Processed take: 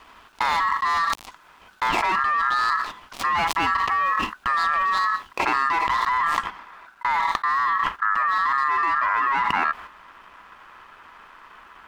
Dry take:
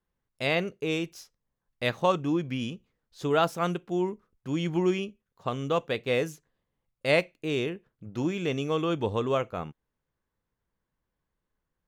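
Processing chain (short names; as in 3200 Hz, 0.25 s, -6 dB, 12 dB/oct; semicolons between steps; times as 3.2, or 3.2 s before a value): switching dead time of 0.13 ms; overdrive pedal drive 27 dB, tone 1500 Hz, clips at -10 dBFS; tilt shelf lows +3 dB, about 890 Hz, from 6.06 s lows +8 dB; gate -45 dBFS, range -7 dB; ring modulator 1500 Hz; graphic EQ 125/500/1000/2000 Hz -9/-9/+5/-8 dB; fast leveller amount 100%; gain -5.5 dB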